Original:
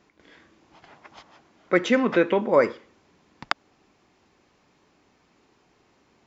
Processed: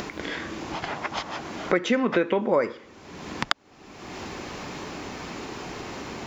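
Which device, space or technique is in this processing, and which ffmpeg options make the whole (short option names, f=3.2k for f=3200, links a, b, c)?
upward and downward compression: -af "acompressor=mode=upward:threshold=-24dB:ratio=2.5,acompressor=threshold=-26dB:ratio=4,volume=6dB"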